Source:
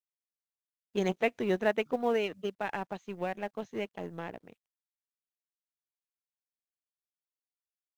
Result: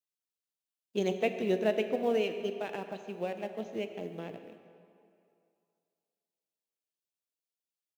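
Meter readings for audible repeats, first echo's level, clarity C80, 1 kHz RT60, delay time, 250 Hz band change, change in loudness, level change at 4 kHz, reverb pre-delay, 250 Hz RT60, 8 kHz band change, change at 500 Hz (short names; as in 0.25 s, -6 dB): 1, -18.0 dB, 9.0 dB, 2.6 s, 0.143 s, 0.0 dB, 0.0 dB, +0.5 dB, 6 ms, 2.3 s, n/a, +0.5 dB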